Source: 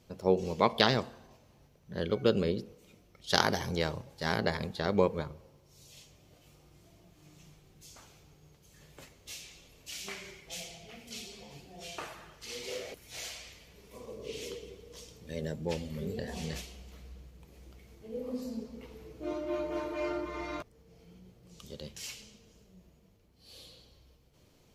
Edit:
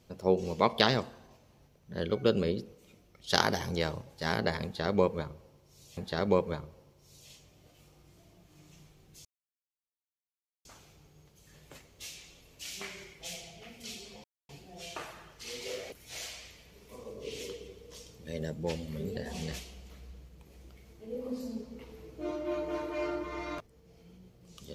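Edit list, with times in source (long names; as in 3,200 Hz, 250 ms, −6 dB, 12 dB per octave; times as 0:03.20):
0:04.64–0:05.97: repeat, 2 plays
0:07.92: splice in silence 1.40 s
0:11.51: splice in silence 0.25 s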